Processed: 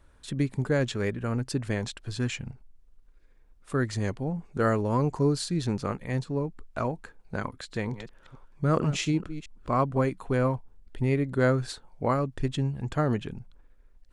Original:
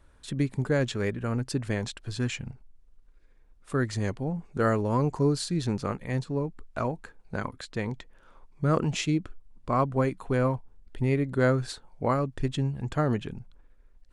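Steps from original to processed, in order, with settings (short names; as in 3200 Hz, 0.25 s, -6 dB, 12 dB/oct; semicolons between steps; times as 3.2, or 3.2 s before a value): 7.47–9.98 reverse delay 0.221 s, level -12 dB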